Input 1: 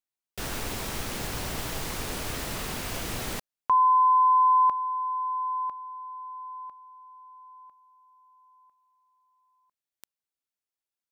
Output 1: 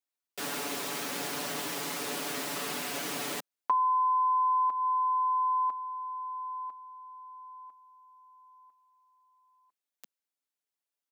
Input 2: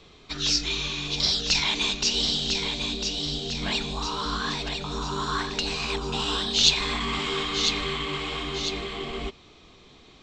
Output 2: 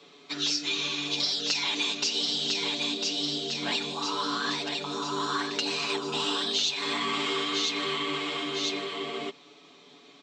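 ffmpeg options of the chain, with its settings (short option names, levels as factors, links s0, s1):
-af "highpass=f=200:w=0.5412,highpass=f=200:w=1.3066,aecho=1:1:7:0.82,acompressor=threshold=0.0708:ratio=6:attack=29:release=218:knee=1:detection=rms,volume=0.75"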